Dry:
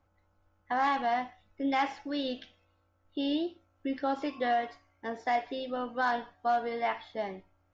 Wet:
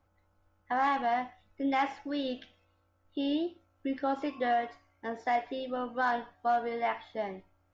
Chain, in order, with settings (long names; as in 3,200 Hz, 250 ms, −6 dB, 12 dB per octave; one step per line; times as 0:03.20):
dynamic equaliser 4,700 Hz, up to −5 dB, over −56 dBFS, Q 1.2